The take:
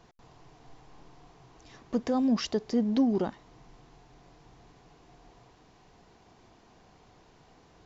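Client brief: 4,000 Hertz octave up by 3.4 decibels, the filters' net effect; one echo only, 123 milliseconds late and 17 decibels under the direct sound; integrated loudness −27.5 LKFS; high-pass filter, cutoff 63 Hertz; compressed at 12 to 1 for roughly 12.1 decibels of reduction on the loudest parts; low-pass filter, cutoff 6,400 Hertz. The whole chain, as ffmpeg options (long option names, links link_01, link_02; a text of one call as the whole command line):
ffmpeg -i in.wav -af "highpass=63,lowpass=6400,equalizer=frequency=4000:width_type=o:gain=6,acompressor=threshold=-33dB:ratio=12,aecho=1:1:123:0.141,volume=11dB" out.wav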